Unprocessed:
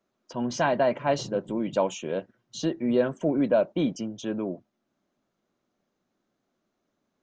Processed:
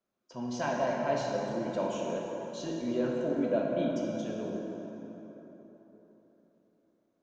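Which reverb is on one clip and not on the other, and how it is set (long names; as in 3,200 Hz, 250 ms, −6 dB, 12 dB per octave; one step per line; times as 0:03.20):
dense smooth reverb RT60 4 s, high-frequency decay 0.55×, DRR −2.5 dB
level −10 dB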